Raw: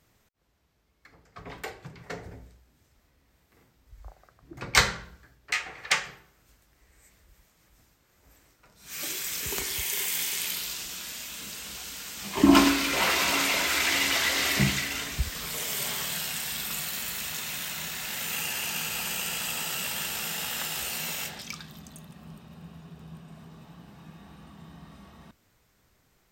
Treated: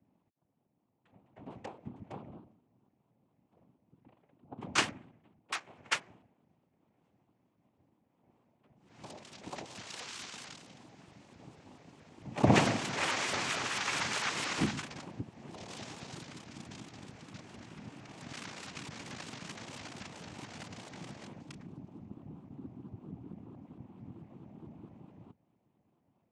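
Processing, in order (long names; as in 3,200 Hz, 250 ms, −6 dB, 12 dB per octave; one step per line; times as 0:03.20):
adaptive Wiener filter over 41 samples
in parallel at +0.5 dB: downward compressor, threshold −37 dBFS, peak gain reduction 22 dB
on the sum: cochlear-implant simulation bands 4
high-frequency loss of the air 65 metres
pitch modulation by a square or saw wave saw up 4.5 Hz, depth 250 cents
level −7 dB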